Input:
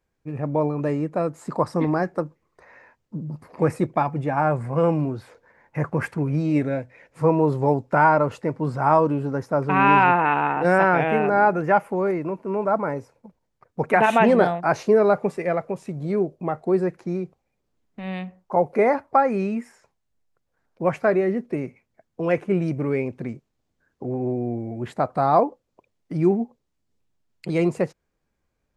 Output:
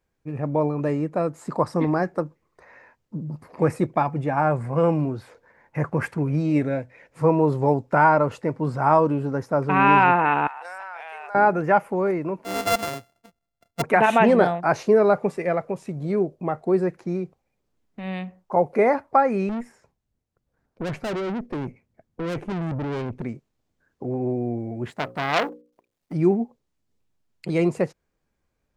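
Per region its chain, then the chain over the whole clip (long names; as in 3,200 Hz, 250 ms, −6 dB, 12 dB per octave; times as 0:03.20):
0:10.47–0:11.35: high-pass filter 880 Hz 24 dB per octave + downward compressor 5 to 1, threshold −24 dBFS + parametric band 1,700 Hz −9.5 dB 2.7 octaves
0:12.44–0:13.82: samples sorted by size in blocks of 64 samples + expander for the loud parts, over −31 dBFS
0:19.49–0:23.22: low-shelf EQ 420 Hz +11.5 dB + tube saturation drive 26 dB, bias 0.65
0:24.90–0:26.13: mu-law and A-law mismatch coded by A + mains-hum notches 60/120/180/240/300/360/420/480/540 Hz + saturating transformer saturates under 2,400 Hz
whole clip: no processing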